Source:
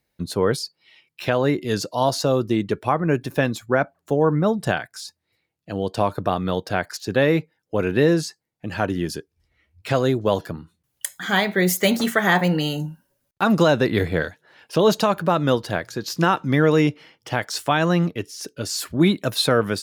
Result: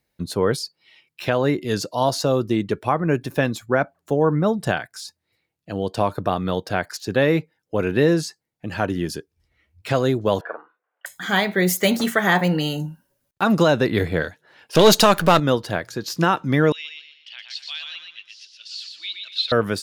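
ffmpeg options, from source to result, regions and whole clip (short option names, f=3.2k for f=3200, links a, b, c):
-filter_complex "[0:a]asettb=1/sr,asplit=3[a][b][c];[a]atrim=end=10.414[d];[b]atrim=start=10.41:end=11.06,asetpts=PTS-STARTPTS,afade=t=in:d=0.004:c=qsin,afade=t=out:st=0.646:d=0.004:c=qsin,highpass=f=460:w=0.5412,highpass=f=460:w=1.3066,equalizer=f=490:t=q:w=4:g=6,equalizer=f=720:t=q:w=4:g=8,equalizer=f=1.1k:t=q:w=4:g=6,equalizer=f=1.5k:t=q:w=4:g=10,lowpass=f=2.1k:w=0.5412,lowpass=f=2.1k:w=1.3066,asplit=2[e][f];[f]adelay=46,volume=-6.5dB[g];[e][g]amix=inputs=2:normalize=0,atrim=end_sample=28665[h];[c]atrim=start=11.056[i];[d][h]acrossfade=d=0.004:c1=hsin:c2=qsin[j];[j][i]acrossfade=d=0.004:c1=qsin:c2=hsin,asettb=1/sr,asplit=3[k][l][m];[k]atrim=end=14.754[n];[l]atrim=start=14.75:end=15.4,asetpts=PTS-STARTPTS,afade=t=in:d=0.004:c=qsin,afade=t=out:st=0.646:d=0.004:c=qsin,aeval=exprs='if(lt(val(0),0),0.447*val(0),val(0))':c=same,highshelf=f=2k:g=9,acontrast=70[o];[m]atrim=start=15.396[p];[n][o]acrossfade=d=0.004:c1=hsin:c2=qsin[q];[q][p]acrossfade=d=0.004:c1=qsin:c2=hsin,asettb=1/sr,asplit=3[r][s][t];[r]atrim=end=16.724[u];[s]atrim=start=16.72:end=19.52,asetpts=PTS-STARTPTS,afade=t=in:d=0.004:c=qsin,afade=t=out:st=2.796:d=0.004:c=qsin,asuperpass=centerf=3400:order=4:qfactor=1.9,aecho=1:1:121|242|363|484|605:0.596|0.226|0.086|0.0327|0.0124,atrim=end_sample=123480[v];[t]atrim=start=19.516[w];[u][v]acrossfade=d=0.004:c1=hsin:c2=qsin[x];[x][w]acrossfade=d=0.004:c1=qsin:c2=hsin"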